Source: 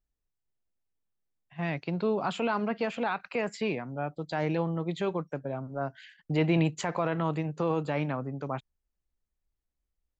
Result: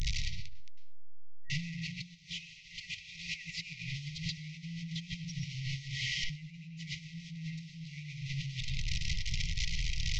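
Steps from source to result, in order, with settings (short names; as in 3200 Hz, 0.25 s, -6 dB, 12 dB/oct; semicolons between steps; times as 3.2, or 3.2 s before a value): delta modulation 32 kbps, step -31 dBFS; on a send at -3.5 dB: reverb RT60 0.60 s, pre-delay 96 ms; on the sum: negative-ratio compressor -37 dBFS, ratio -1; FFT band-reject 180–1900 Hz; gain +1 dB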